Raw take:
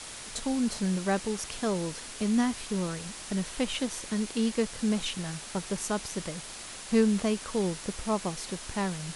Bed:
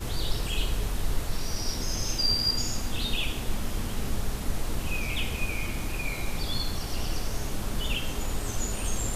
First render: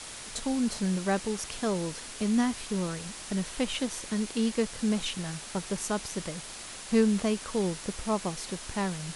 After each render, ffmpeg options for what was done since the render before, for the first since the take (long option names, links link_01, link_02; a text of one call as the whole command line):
ffmpeg -i in.wav -af anull out.wav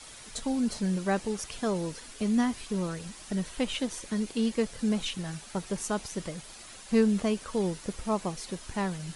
ffmpeg -i in.wav -af "afftdn=noise_reduction=8:noise_floor=-43" out.wav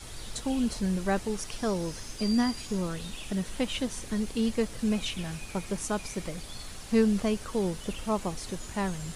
ffmpeg -i in.wav -i bed.wav -filter_complex "[1:a]volume=-13.5dB[link_01];[0:a][link_01]amix=inputs=2:normalize=0" out.wav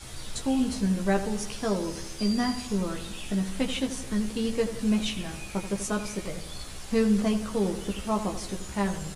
ffmpeg -i in.wav -filter_complex "[0:a]asplit=2[link_01][link_02];[link_02]adelay=15,volume=-4dB[link_03];[link_01][link_03]amix=inputs=2:normalize=0,asplit=2[link_04][link_05];[link_05]adelay=84,lowpass=frequency=2000:poles=1,volume=-10dB,asplit=2[link_06][link_07];[link_07]adelay=84,lowpass=frequency=2000:poles=1,volume=0.53,asplit=2[link_08][link_09];[link_09]adelay=84,lowpass=frequency=2000:poles=1,volume=0.53,asplit=2[link_10][link_11];[link_11]adelay=84,lowpass=frequency=2000:poles=1,volume=0.53,asplit=2[link_12][link_13];[link_13]adelay=84,lowpass=frequency=2000:poles=1,volume=0.53,asplit=2[link_14][link_15];[link_15]adelay=84,lowpass=frequency=2000:poles=1,volume=0.53[link_16];[link_04][link_06][link_08][link_10][link_12][link_14][link_16]amix=inputs=7:normalize=0" out.wav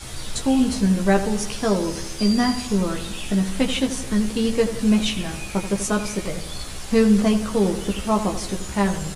ffmpeg -i in.wav -af "volume=7dB" out.wav